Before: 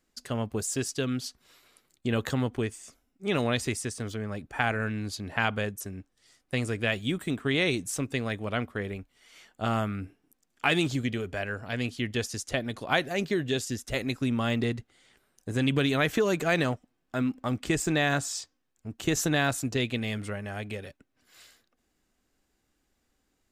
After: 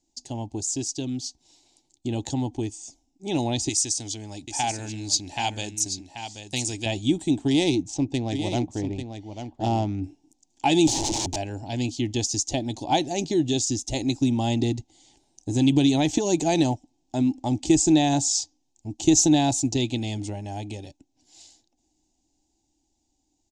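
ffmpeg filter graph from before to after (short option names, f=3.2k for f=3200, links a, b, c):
-filter_complex "[0:a]asettb=1/sr,asplit=3[a][b][c];[a]atrim=end=3.694[d];[b]atrim=start=3.69:end=6.86,asetpts=PTS-STARTPTS,afade=t=in:d=0.004:c=qsin,afade=t=out:st=3.166:d=0.004:c=qsin,tiltshelf=f=1.4k:g=-7.5,aecho=1:1:784:0.355,atrim=end_sample=139797[e];[c]atrim=start=6.856[f];[d][e]acrossfade=d=0.004:c1=hsin:c2=qsin[g];[g][f]acrossfade=d=0.004:c1=qsin:c2=hsin,asettb=1/sr,asplit=3[h][i][j];[h]atrim=end=7.484[k];[i]atrim=start=7.48:end=10.04,asetpts=PTS-STARTPTS,afade=t=in:d=0.004:c=qsin,afade=t=out:st=2.556:d=0.004:c=qsin,adynamicsmooth=sensitivity=3.5:basefreq=2.7k,aecho=1:1:843:0.376,atrim=end_sample=112896[l];[j]atrim=start=10.036[m];[k][l]acrossfade=d=0.004:c1=hsin:c2=qsin[n];[n][m]acrossfade=d=0.004:c1=qsin:c2=hsin,asettb=1/sr,asplit=3[o][p][q];[o]atrim=end=10.874[r];[p]atrim=start=10.87:end=11.36,asetpts=PTS-STARTPTS,afade=t=in:d=0.004:c=qsin,afade=t=out:st=0.486:d=0.004:c=qsin,highpass=48,acontrast=52,aeval=exprs='(mod(21.1*val(0)+1,2)-1)/21.1':c=same[s];[q]atrim=start=11.356[t];[r][s]acrossfade=d=0.004:c1=hsin:c2=qsin[u];[u][t]acrossfade=d=0.004:c1=qsin:c2=hsin,firequalizer=gain_entry='entry(110,0);entry(210,-5);entry(310,8);entry(450,-11);entry(850,6);entry(1200,-26);entry(2500,-8);entry(3600,-1);entry(6600,9);entry(13000,-26)':delay=0.05:min_phase=1,dynaudnorm=f=620:g=11:m=5.5dB"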